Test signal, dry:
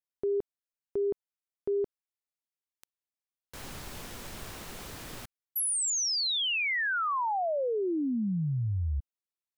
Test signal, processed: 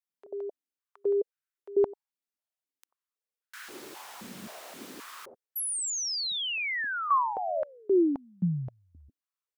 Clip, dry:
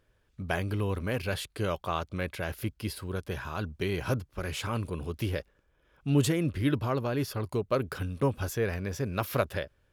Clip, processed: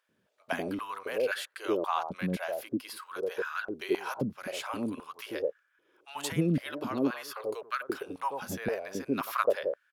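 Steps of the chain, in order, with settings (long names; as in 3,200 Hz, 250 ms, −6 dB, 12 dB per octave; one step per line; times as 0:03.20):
multiband delay without the direct sound highs, lows 90 ms, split 720 Hz
high-pass on a step sequencer 3.8 Hz 200–1,500 Hz
level −2.5 dB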